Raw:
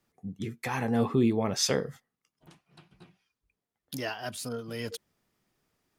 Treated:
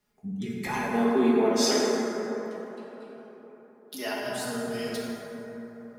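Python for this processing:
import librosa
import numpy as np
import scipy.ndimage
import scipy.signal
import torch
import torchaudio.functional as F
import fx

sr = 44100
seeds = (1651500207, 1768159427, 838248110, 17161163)

y = fx.highpass(x, sr, hz=260.0, slope=24, at=(0.67, 4.07))
y = y + 0.71 * np.pad(y, (int(4.8 * sr / 1000.0), 0))[:len(y)]
y = fx.rev_plate(y, sr, seeds[0], rt60_s=4.0, hf_ratio=0.35, predelay_ms=0, drr_db=-5.0)
y = y * librosa.db_to_amplitude(-3.0)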